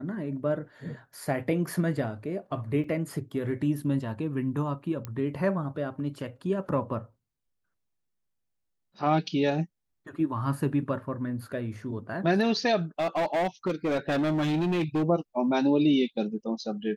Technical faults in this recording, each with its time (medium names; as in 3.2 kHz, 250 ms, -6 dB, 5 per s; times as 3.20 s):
2.84 s: dropout 4.3 ms
5.05 s: pop -21 dBFS
12.99–15.03 s: clipped -23 dBFS